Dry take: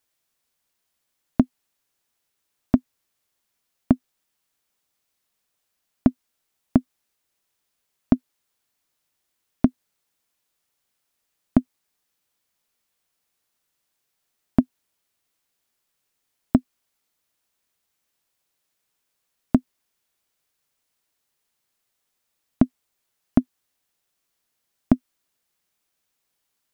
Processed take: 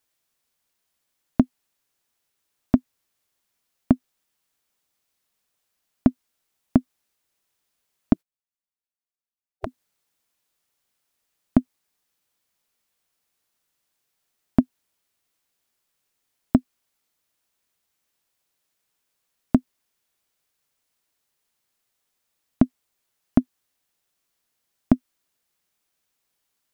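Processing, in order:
0:08.13–0:09.67: gate on every frequency bin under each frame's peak −15 dB weak

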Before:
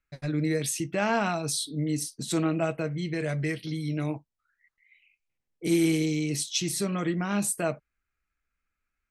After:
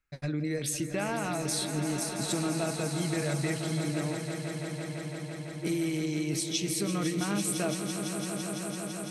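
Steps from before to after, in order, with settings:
downward compressor, threshold −28 dBFS, peak gain reduction 9 dB
on a send: echo that builds up and dies away 168 ms, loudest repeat 5, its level −11 dB

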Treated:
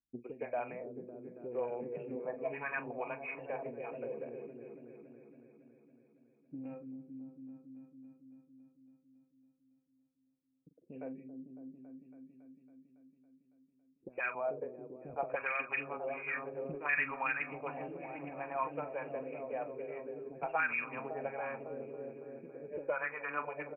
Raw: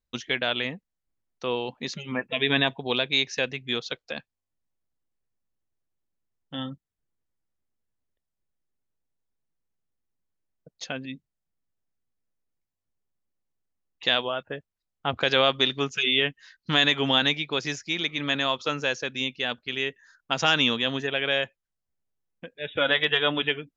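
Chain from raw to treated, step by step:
hearing-aid frequency compression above 2,200 Hz 4 to 1
linear-phase brick-wall low-pass 2,800 Hz
double-tracking delay 42 ms −12 dB
echo whose low-pass opens from repeat to repeat 278 ms, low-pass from 400 Hz, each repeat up 1 octave, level −6 dB
envelope filter 290–1,800 Hz, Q 3.5, up, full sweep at −16 dBFS
spectral tilt −3 dB per octave
multiband delay without the direct sound lows, highs 110 ms, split 380 Hz
highs frequency-modulated by the lows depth 0.13 ms
level −3 dB

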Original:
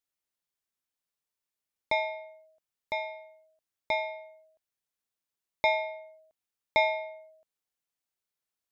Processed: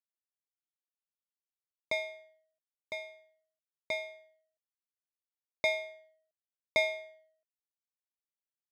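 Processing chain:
notch comb filter 870 Hz
power curve on the samples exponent 1.4

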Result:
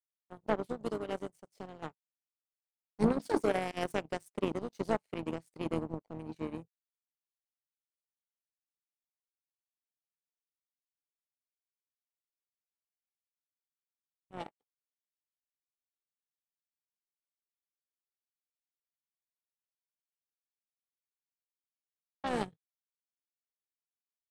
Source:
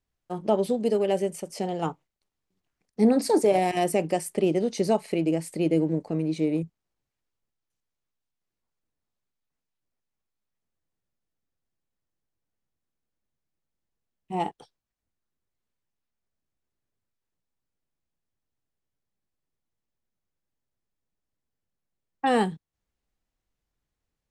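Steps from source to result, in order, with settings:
noise gate −45 dBFS, range −11 dB
pitch-shifted copies added −7 semitones −15 dB, −5 semitones −10 dB
power curve on the samples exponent 2
level −4 dB

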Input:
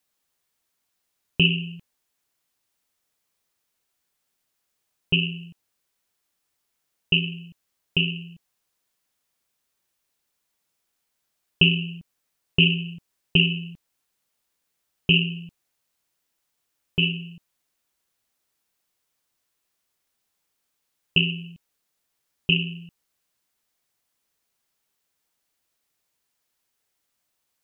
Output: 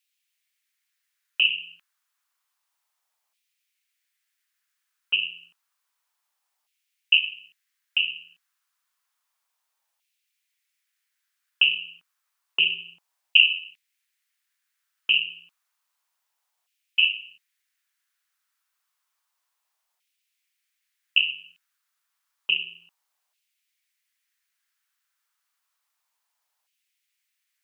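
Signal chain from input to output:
auto-filter high-pass saw down 0.3 Hz 790–2,600 Hz
level −2.5 dB

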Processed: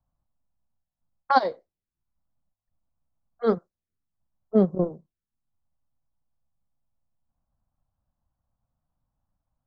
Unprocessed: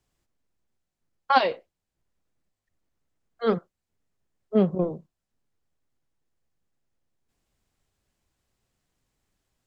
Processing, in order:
transient designer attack +1 dB, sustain −7 dB
phaser swept by the level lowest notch 390 Hz, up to 2,700 Hz, full sweep at −29.5 dBFS
low-pass that shuts in the quiet parts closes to 1,000 Hz, open at −22.5 dBFS
level +1 dB

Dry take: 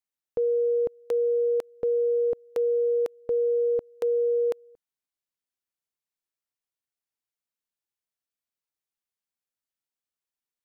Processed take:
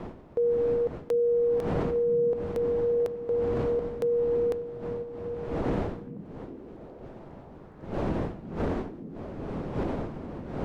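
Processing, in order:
wind on the microphone 420 Hz −32 dBFS
brickwall limiter −20 dBFS, peak gain reduction 12 dB
echo through a band-pass that steps 411 ms, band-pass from 190 Hz, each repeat 0.7 octaves, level −8 dB

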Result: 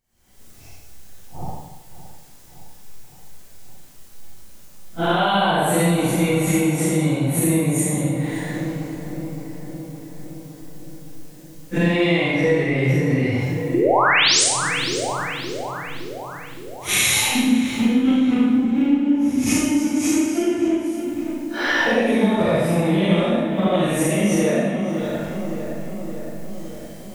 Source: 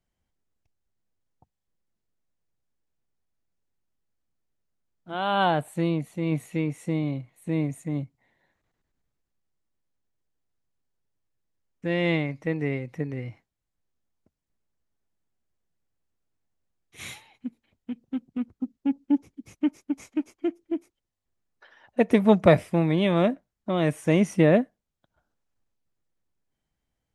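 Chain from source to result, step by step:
random phases in long frames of 200 ms
camcorder AGC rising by 73 dB per second
high-shelf EQ 4,300 Hz +9.5 dB
sound drawn into the spectrogram rise, 0:13.74–0:14.44, 310–9,900 Hz −12 dBFS
feedback echo with a low-pass in the loop 565 ms, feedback 66%, low-pass 2,700 Hz, level −13.5 dB
downward compressor 6 to 1, threshold −20 dBFS, peak gain reduction 9 dB
four-comb reverb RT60 0.93 s, combs from 31 ms, DRR −3.5 dB

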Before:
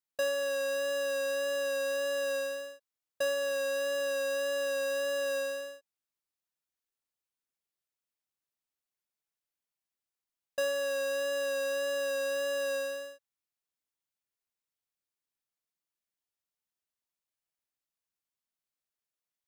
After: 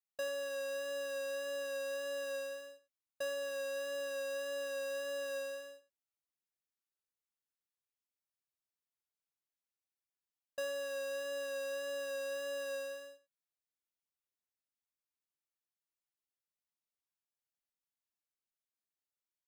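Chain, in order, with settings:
single-tap delay 89 ms −16.5 dB
level −8 dB

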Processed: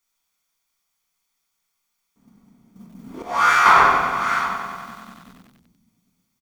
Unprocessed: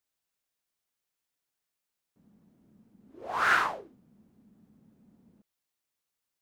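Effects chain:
parametric band 6,100 Hz +5.5 dB 0.25 octaves
noise gate −59 dBFS, range −13 dB
parametric band 110 Hz −9 dB 2.8 octaves
comb filter 0.9 ms, depth 48%
single-tap delay 791 ms −22.5 dB
rectangular room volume 430 cubic metres, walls mixed, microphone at 1.7 metres
downward compressor 2.5 to 1, threshold −23 dBFS, peak gain reduction 6 dB
0:03.22–0:03.66: tuned comb filter 71 Hz, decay 0.41 s, harmonics all, mix 100%
boost into a limiter +21 dB
feedback echo at a low word length 94 ms, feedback 80%, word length 7 bits, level −12 dB
level −2 dB

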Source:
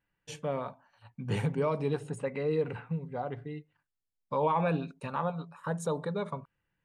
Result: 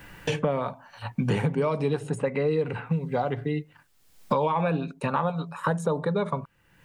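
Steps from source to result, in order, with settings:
multiband upward and downward compressor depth 100%
level +5.5 dB

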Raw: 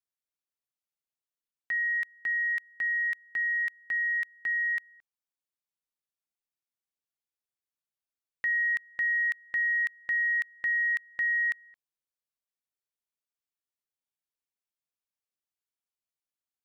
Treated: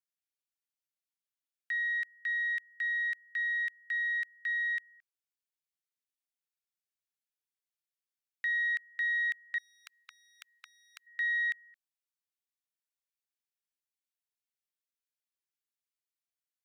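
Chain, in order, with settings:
stylus tracing distortion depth 0.021 ms
high-pass filter 1,400 Hz 24 dB per octave
0:09.58–0:11.07: every bin compressed towards the loudest bin 10 to 1
level −3 dB

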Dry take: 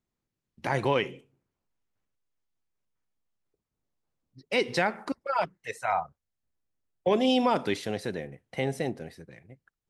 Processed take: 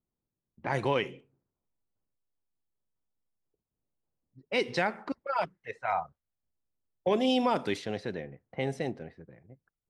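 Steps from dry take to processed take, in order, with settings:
low-pass that shuts in the quiet parts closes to 940 Hz, open at −23 dBFS
level −2.5 dB

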